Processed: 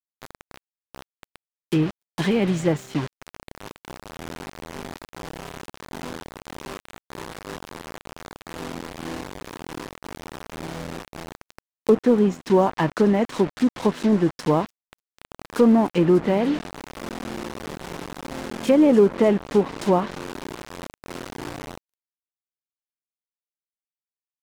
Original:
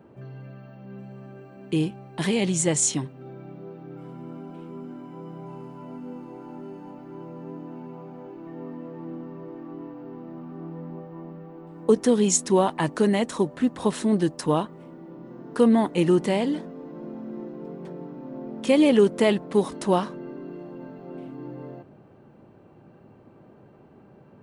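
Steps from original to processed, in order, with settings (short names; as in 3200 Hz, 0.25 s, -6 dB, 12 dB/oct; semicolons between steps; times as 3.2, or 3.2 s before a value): 6.5–8.13 doubler 46 ms -7 dB; in parallel at -5 dB: hard clip -17 dBFS, distortion -12 dB; on the sum: bit-crush 5-bit; treble ducked by the level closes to 1400 Hz, closed at -13.5 dBFS; on a send: thin delay 0.296 s, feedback 76%, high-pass 4400 Hz, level -10 dB; on the sum: crossover distortion -38 dBFS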